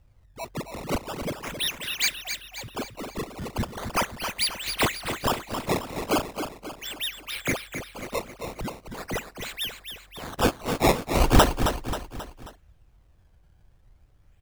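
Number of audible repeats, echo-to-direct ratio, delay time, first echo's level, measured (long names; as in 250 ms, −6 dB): 4, −7.0 dB, 268 ms, −8.0 dB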